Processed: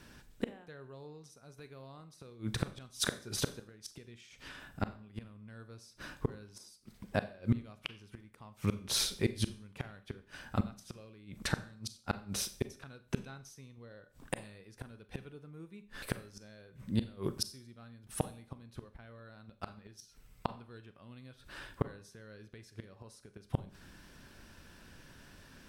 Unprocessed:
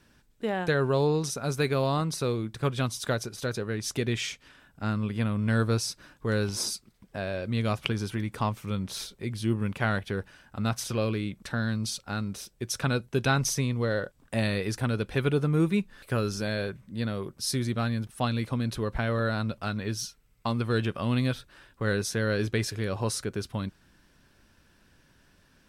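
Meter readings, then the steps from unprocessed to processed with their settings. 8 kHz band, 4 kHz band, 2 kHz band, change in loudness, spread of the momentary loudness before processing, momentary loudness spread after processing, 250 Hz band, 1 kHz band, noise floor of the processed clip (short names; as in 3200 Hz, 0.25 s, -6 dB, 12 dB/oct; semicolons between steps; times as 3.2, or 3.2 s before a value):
-7.5 dB, -6.5 dB, -13.0 dB, -10.0 dB, 9 LU, 20 LU, -11.5 dB, -12.5 dB, -64 dBFS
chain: flipped gate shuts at -23 dBFS, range -31 dB; Schroeder reverb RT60 0.44 s, combs from 30 ms, DRR 12 dB; gain +5.5 dB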